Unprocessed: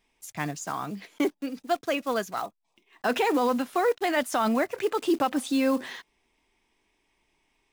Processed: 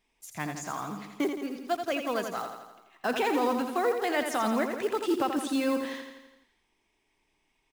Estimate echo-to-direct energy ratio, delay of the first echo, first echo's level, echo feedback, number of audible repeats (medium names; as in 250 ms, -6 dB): -5.0 dB, 84 ms, -7.0 dB, 59%, 7